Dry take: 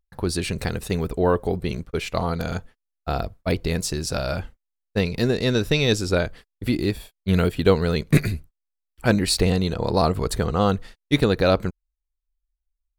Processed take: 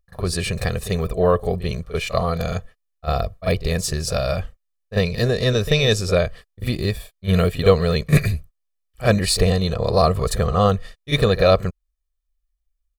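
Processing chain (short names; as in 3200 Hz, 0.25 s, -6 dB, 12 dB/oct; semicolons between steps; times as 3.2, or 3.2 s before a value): comb 1.7 ms, depth 68%; pre-echo 40 ms -13 dB; gain +1 dB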